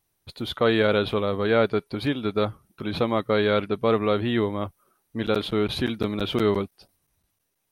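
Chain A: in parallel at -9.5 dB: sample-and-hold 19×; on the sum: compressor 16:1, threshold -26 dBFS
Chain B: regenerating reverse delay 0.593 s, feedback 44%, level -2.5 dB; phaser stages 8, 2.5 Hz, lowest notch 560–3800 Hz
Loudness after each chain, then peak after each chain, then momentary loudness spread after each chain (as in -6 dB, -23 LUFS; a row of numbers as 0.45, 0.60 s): -32.0, -24.5 LUFS; -14.5, -7.0 dBFS; 6, 9 LU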